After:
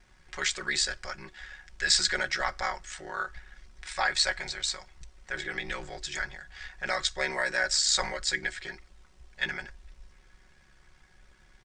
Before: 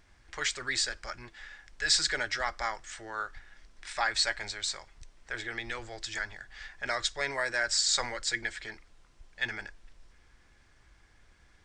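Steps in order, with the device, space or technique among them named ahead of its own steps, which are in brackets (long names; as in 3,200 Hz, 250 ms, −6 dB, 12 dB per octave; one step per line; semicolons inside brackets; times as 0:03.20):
ring-modulated robot voice (ring modulation 34 Hz; comb filter 5.4 ms)
level +3.5 dB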